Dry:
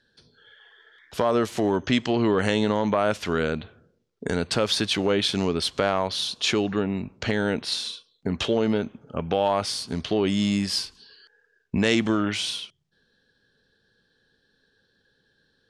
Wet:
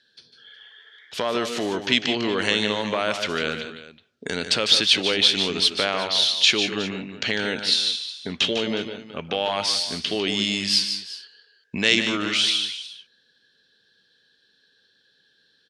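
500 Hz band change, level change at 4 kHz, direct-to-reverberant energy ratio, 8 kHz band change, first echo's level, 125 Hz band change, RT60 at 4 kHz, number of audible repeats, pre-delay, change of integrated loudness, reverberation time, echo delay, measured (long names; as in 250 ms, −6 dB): −2.5 dB, +9.0 dB, no reverb audible, +4.5 dB, −9.0 dB, −7.0 dB, no reverb audible, 2, no reverb audible, +3.5 dB, no reverb audible, 150 ms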